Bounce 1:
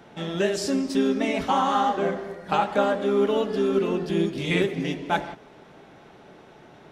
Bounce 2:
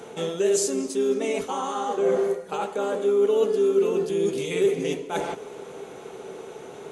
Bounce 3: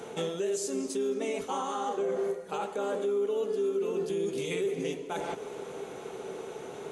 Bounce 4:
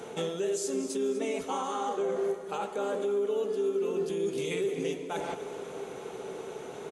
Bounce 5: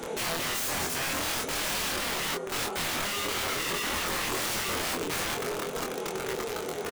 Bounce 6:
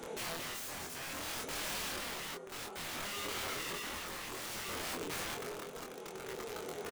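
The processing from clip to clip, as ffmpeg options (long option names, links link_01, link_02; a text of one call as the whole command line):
ffmpeg -i in.wav -af "lowshelf=frequency=130:gain=-11,areverse,acompressor=threshold=-33dB:ratio=8,areverse,superequalizer=7b=3.16:11b=0.631:15b=3.55:16b=3.98,volume=6.5dB" out.wav
ffmpeg -i in.wav -af "alimiter=limit=-22dB:level=0:latency=1:release=282,volume=-1dB" out.wav
ffmpeg -i in.wav -af "aecho=1:1:247|494|741|988|1235:0.188|0.0979|0.0509|0.0265|0.0138" out.wav
ffmpeg -i in.wav -filter_complex "[0:a]aeval=exprs='(mod(42.2*val(0)+1,2)-1)/42.2':channel_layout=same,flanger=delay=3.4:depth=9.2:regen=-48:speed=0.51:shape=triangular,asplit=2[link_01][link_02];[link_02]adelay=24,volume=-3dB[link_03];[link_01][link_03]amix=inputs=2:normalize=0,volume=9dB" out.wav
ffmpeg -i in.wav -af "tremolo=f=0.59:d=0.42,volume=-8.5dB" out.wav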